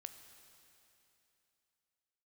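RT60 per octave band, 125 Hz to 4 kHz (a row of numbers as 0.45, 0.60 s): 3.1, 3.0, 3.0, 3.0, 3.0, 3.0 s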